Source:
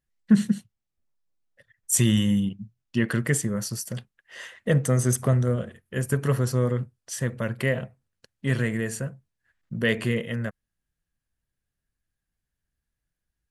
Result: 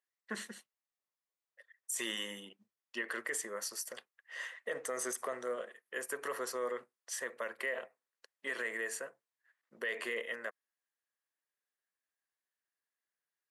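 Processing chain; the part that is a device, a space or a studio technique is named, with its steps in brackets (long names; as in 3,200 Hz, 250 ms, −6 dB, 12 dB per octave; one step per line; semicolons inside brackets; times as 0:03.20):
laptop speaker (high-pass filter 410 Hz 24 dB per octave; parametric band 1,100 Hz +5.5 dB 0.44 octaves; parametric band 1,900 Hz +6 dB 0.33 octaves; brickwall limiter −20.5 dBFS, peak gain reduction 12.5 dB)
level −6.5 dB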